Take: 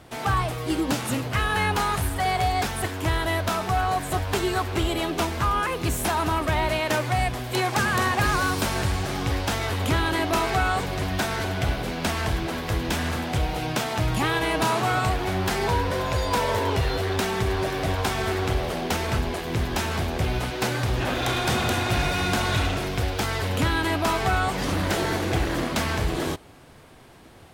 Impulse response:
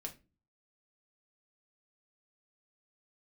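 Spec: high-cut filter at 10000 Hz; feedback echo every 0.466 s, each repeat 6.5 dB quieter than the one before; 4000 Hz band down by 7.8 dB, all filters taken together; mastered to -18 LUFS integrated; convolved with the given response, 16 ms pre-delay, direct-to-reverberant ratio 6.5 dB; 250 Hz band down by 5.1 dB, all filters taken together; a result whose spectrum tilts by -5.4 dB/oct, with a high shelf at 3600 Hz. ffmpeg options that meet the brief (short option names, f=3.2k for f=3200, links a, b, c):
-filter_complex "[0:a]lowpass=10k,equalizer=f=250:t=o:g=-7.5,highshelf=f=3.6k:g=-3.5,equalizer=f=4k:t=o:g=-8,aecho=1:1:466|932|1398|1864|2330|2796:0.473|0.222|0.105|0.0491|0.0231|0.0109,asplit=2[a][b];[1:a]atrim=start_sample=2205,adelay=16[c];[b][c]afir=irnorm=-1:irlink=0,volume=-3.5dB[d];[a][d]amix=inputs=2:normalize=0,volume=7dB"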